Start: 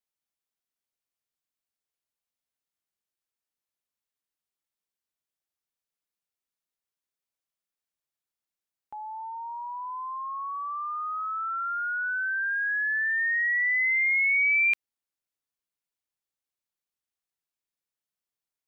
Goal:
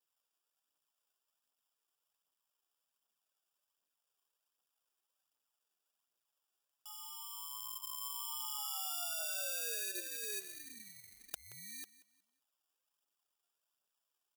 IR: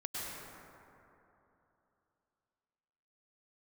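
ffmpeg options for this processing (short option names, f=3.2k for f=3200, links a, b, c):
-filter_complex "[0:a]asplit=2[a][b];[b]aecho=0:1:651:0.376[c];[a][c]amix=inputs=2:normalize=0,agate=range=-16dB:threshold=-24dB:ratio=16:detection=peak,alimiter=level_in=1dB:limit=-24dB:level=0:latency=1:release=15,volume=-1dB,afftfilt=real='re*lt(hypot(re,im),0.1)':imag='im*lt(hypot(re,im),0.1)':win_size=1024:overlap=0.75,crystalizer=i=7.5:c=0,adynamicequalizer=threshold=0.00316:dfrequency=2700:dqfactor=2.1:tfrequency=2700:tqfactor=2.1:attack=5:release=100:ratio=0.375:range=2:mode=cutabove:tftype=bell,acrusher=samples=21:mix=1:aa=0.000001,asplit=2[d][e];[e]aecho=0:1:240|480|720:0.133|0.0373|0.0105[f];[d][f]amix=inputs=2:normalize=0,atempo=1.3,aphaser=in_gain=1:out_gain=1:delay=2.9:decay=0.44:speed=1.3:type=triangular,aderivative,volume=8dB"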